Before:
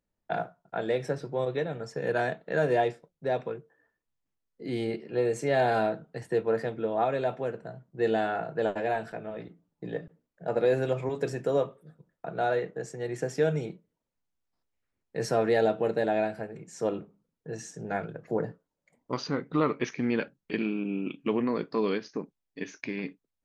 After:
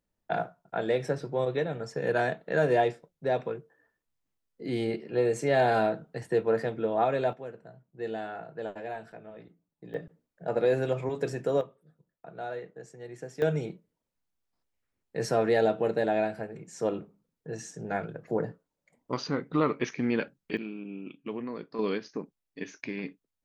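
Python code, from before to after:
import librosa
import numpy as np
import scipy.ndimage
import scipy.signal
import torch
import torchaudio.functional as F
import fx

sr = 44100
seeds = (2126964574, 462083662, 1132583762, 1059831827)

y = fx.gain(x, sr, db=fx.steps((0.0, 1.0), (7.33, -8.5), (9.94, -0.5), (11.61, -9.5), (13.42, 0.0), (20.57, -8.5), (21.79, -1.5)))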